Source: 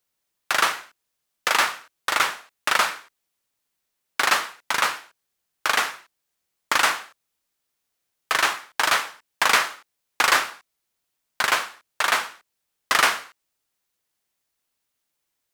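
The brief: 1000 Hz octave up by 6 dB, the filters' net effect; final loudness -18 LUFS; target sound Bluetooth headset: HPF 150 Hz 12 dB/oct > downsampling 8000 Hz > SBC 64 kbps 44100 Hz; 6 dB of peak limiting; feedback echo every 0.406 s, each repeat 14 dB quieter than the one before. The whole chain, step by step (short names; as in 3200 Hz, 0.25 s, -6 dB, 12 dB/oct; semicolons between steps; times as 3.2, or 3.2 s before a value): bell 1000 Hz +7.5 dB; limiter -6.5 dBFS; HPF 150 Hz 12 dB/oct; feedback echo 0.406 s, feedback 20%, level -14 dB; downsampling 8000 Hz; gain +4.5 dB; SBC 64 kbps 44100 Hz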